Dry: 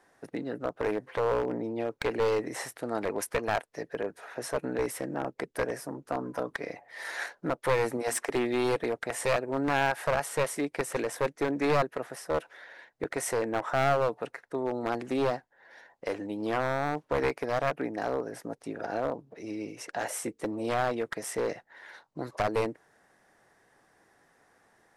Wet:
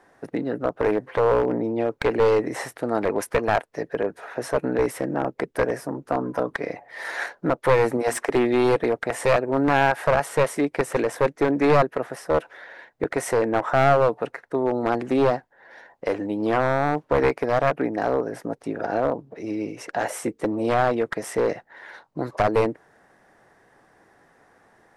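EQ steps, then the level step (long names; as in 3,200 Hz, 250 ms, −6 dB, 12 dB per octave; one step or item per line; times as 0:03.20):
high-shelf EQ 2,800 Hz −8.5 dB
+8.5 dB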